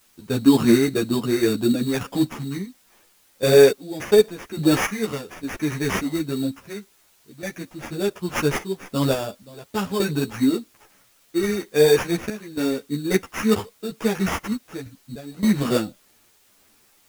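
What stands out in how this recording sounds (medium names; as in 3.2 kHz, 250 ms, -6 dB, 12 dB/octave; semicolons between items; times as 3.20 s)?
aliases and images of a low sample rate 4.1 kHz, jitter 0%; random-step tremolo, depth 90%; a quantiser's noise floor 10-bit, dither triangular; a shimmering, thickened sound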